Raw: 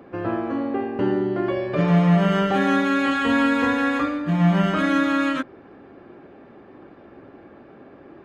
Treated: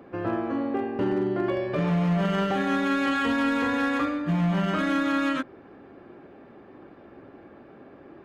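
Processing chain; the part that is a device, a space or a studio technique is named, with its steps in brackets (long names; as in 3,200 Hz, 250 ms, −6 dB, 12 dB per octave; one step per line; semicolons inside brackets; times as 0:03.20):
limiter into clipper (brickwall limiter −13.5 dBFS, peak gain reduction 6 dB; hard clipping −16.5 dBFS, distortion −22 dB)
level −2.5 dB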